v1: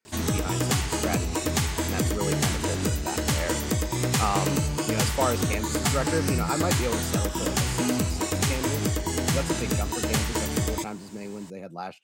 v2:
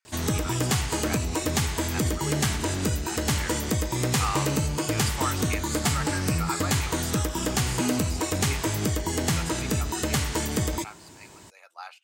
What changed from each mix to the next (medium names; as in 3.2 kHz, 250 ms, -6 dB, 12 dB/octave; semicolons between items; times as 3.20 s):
speech: add high-pass 950 Hz 24 dB/octave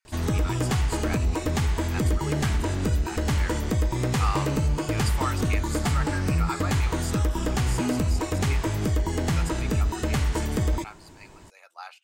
background: add treble shelf 3.4 kHz -10 dB; master: remove high-pass 89 Hz 12 dB/octave